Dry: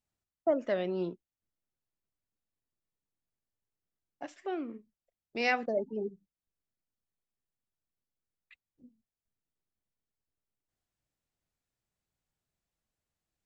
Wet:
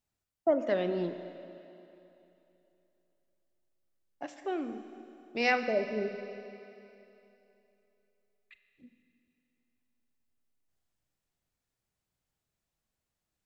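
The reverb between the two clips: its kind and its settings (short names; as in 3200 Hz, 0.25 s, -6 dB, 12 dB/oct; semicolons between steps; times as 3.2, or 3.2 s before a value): Schroeder reverb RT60 3 s, combs from 30 ms, DRR 8.5 dB; gain +1.5 dB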